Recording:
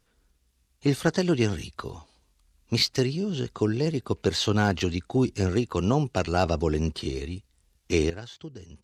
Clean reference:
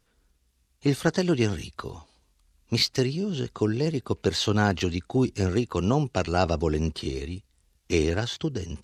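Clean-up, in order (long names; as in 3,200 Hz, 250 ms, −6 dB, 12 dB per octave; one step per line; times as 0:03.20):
clipped peaks rebuilt −10.5 dBFS
level correction +12 dB, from 0:08.10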